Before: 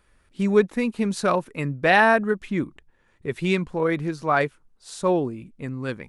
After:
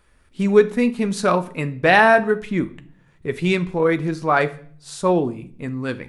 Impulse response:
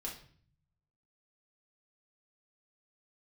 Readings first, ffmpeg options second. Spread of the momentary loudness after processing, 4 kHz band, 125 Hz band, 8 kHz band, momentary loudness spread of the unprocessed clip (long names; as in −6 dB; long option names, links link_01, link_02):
15 LU, +3.5 dB, +3.5 dB, +3.5 dB, 15 LU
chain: -filter_complex "[0:a]asplit=2[link_01][link_02];[1:a]atrim=start_sample=2205,adelay=12[link_03];[link_02][link_03]afir=irnorm=-1:irlink=0,volume=-9.5dB[link_04];[link_01][link_04]amix=inputs=2:normalize=0,volume=3dB"